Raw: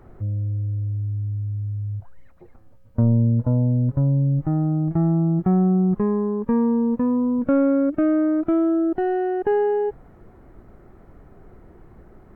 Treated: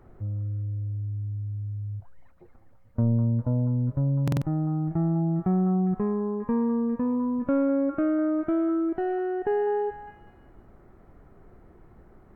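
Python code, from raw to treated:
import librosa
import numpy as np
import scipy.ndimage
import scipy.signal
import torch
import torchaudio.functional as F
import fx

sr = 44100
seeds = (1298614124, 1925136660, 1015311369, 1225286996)

y = fx.echo_stepped(x, sr, ms=202, hz=1000.0, octaves=0.7, feedback_pct=70, wet_db=-4.5)
y = fx.buffer_glitch(y, sr, at_s=(4.23,), block=2048, repeats=3)
y = y * librosa.db_to_amplitude(-5.5)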